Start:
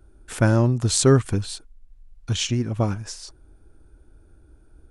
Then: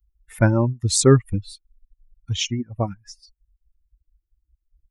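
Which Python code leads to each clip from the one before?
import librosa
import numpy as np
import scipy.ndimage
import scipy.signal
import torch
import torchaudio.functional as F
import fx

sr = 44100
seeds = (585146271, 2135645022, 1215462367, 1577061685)

y = fx.bin_expand(x, sr, power=2.0)
y = fx.dereverb_blind(y, sr, rt60_s=0.54)
y = y * 10.0 ** (4.0 / 20.0)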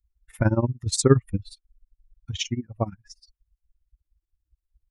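y = fx.high_shelf(x, sr, hz=6400.0, db=-5.0)
y = y * (1.0 - 0.89 / 2.0 + 0.89 / 2.0 * np.cos(2.0 * np.pi * 17.0 * (np.arange(len(y)) / sr)))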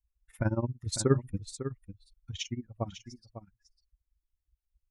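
y = x + 10.0 ** (-11.5 / 20.0) * np.pad(x, (int(550 * sr / 1000.0), 0))[:len(x)]
y = y * 10.0 ** (-8.0 / 20.0)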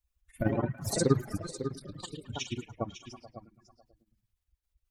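y = fx.spec_quant(x, sr, step_db=30)
y = fx.echo_pitch(y, sr, ms=132, semitones=4, count=2, db_per_echo=-6.0)
y = fx.echo_stepped(y, sr, ms=108, hz=2900.0, octaves=-0.7, feedback_pct=70, wet_db=-6.0)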